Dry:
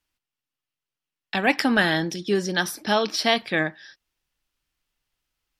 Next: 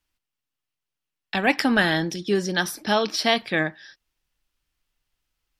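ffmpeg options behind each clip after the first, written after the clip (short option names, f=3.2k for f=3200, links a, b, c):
-af "lowshelf=f=71:g=6"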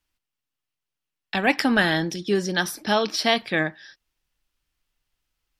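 -af anull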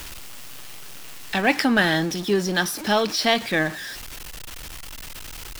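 -af "aeval=exprs='val(0)+0.5*0.0316*sgn(val(0))':c=same"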